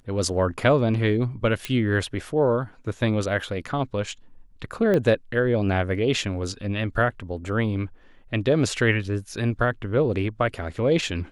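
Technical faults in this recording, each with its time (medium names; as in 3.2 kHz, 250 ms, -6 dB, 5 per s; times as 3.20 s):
1.65 s: pop -13 dBFS
4.94 s: pop -13 dBFS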